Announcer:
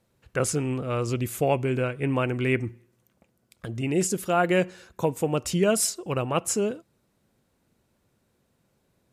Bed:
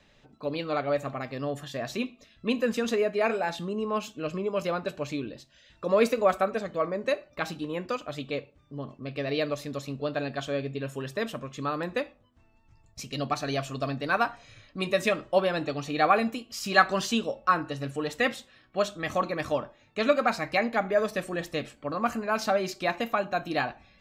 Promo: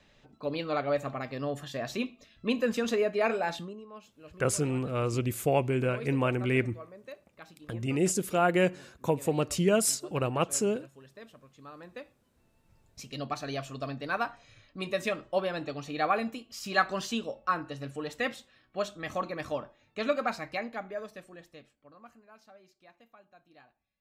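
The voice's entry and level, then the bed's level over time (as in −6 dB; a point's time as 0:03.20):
4.05 s, −2.5 dB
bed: 0:03.57 −1.5 dB
0:03.85 −18.5 dB
0:11.61 −18.5 dB
0:12.71 −5.5 dB
0:20.28 −5.5 dB
0:22.48 −30 dB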